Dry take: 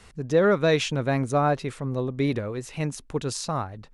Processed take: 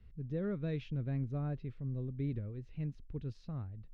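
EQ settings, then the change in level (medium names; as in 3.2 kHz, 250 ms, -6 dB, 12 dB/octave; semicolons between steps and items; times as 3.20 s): distance through air 300 m; amplifier tone stack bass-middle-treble 10-0-1; treble shelf 5.4 kHz -7 dB; +5.5 dB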